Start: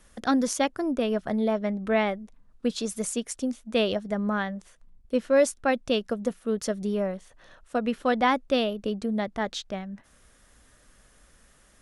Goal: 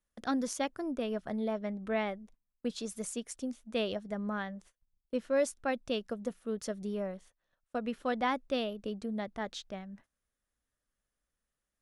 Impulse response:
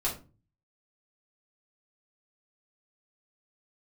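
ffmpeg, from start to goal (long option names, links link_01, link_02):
-af "agate=range=-21dB:threshold=-47dB:ratio=16:detection=peak,volume=-8.5dB"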